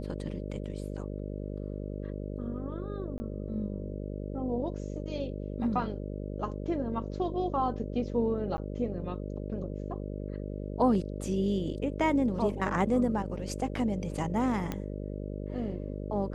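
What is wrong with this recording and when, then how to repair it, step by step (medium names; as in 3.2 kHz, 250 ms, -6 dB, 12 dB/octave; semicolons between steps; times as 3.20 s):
buzz 50 Hz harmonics 12 -37 dBFS
3.18–3.20 s: dropout 20 ms
8.57–8.58 s: dropout 10 ms
14.72 s: pop -19 dBFS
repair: de-click; de-hum 50 Hz, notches 12; interpolate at 3.18 s, 20 ms; interpolate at 8.57 s, 10 ms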